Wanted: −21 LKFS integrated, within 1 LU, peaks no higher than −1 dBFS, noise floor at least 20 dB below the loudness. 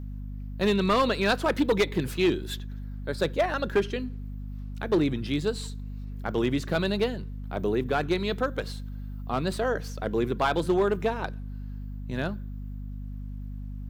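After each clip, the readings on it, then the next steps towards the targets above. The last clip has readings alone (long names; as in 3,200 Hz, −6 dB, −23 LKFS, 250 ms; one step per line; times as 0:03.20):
share of clipped samples 0.7%; peaks flattened at −17.0 dBFS; mains hum 50 Hz; hum harmonics up to 250 Hz; level of the hum −34 dBFS; integrated loudness −28.0 LKFS; sample peak −17.0 dBFS; target loudness −21.0 LKFS
→ clipped peaks rebuilt −17 dBFS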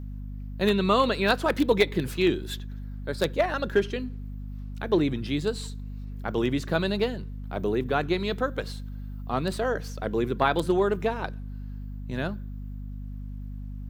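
share of clipped samples 0.0%; mains hum 50 Hz; hum harmonics up to 250 Hz; level of the hum −34 dBFS
→ mains-hum notches 50/100/150/200/250 Hz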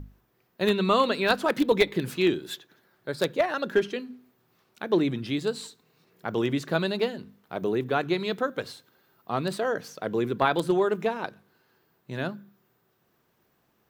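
mains hum none found; integrated loudness −27.0 LKFS; sample peak −8.0 dBFS; target loudness −21.0 LKFS
→ level +6 dB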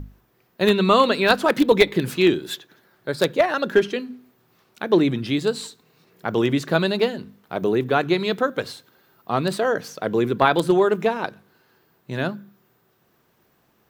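integrated loudness −21.0 LKFS; sample peak −2.0 dBFS; background noise floor −64 dBFS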